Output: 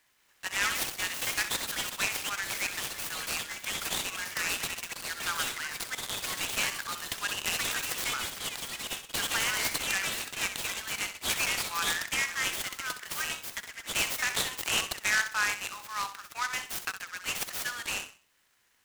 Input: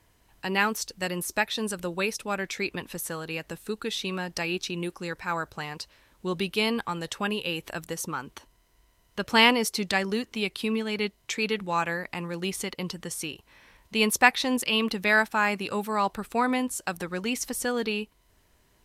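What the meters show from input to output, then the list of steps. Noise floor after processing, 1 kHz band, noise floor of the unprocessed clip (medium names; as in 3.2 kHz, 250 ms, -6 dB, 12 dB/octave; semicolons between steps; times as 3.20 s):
-67 dBFS, -7.5 dB, -65 dBFS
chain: high-pass 1.3 kHz 24 dB/octave; de-esser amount 45%; peak limiter -17.5 dBFS, peak gain reduction 11.5 dB; ever faster or slower copies 176 ms, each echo +4 st, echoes 3; on a send: flutter echo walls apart 11 m, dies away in 0.38 s; on the sum: delay time shaken by noise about 3.9 kHz, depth 0.046 ms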